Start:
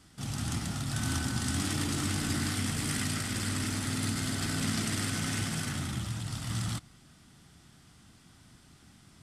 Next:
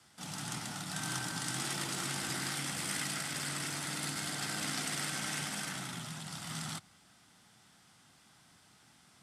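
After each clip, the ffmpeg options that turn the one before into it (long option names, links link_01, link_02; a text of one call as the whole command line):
ffmpeg -i in.wav -af "lowshelf=frequency=440:width_type=q:width=1.5:gain=-8,afreqshift=45,volume=-2dB" out.wav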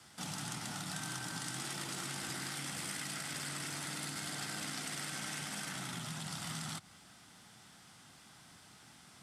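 ffmpeg -i in.wav -af "acompressor=threshold=-43dB:ratio=6,volume=4.5dB" out.wav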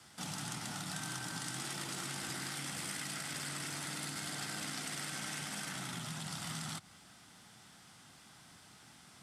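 ffmpeg -i in.wav -af anull out.wav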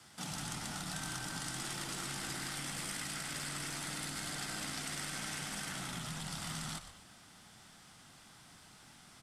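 ffmpeg -i in.wav -filter_complex "[0:a]asplit=5[link_01][link_02][link_03][link_04][link_05];[link_02]adelay=121,afreqshift=-120,volume=-11dB[link_06];[link_03]adelay=242,afreqshift=-240,volume=-20.6dB[link_07];[link_04]adelay=363,afreqshift=-360,volume=-30.3dB[link_08];[link_05]adelay=484,afreqshift=-480,volume=-39.9dB[link_09];[link_01][link_06][link_07][link_08][link_09]amix=inputs=5:normalize=0" out.wav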